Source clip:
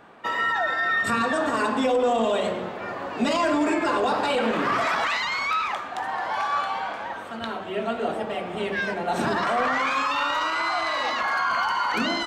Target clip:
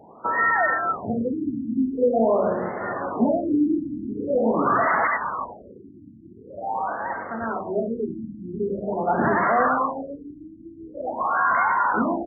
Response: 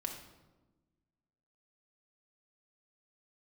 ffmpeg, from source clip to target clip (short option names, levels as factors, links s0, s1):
-af "highpass=44,afftfilt=real='re*lt(b*sr/1024,330*pow(2200/330,0.5+0.5*sin(2*PI*0.45*pts/sr)))':imag='im*lt(b*sr/1024,330*pow(2200/330,0.5+0.5*sin(2*PI*0.45*pts/sr)))':win_size=1024:overlap=0.75,volume=1.58"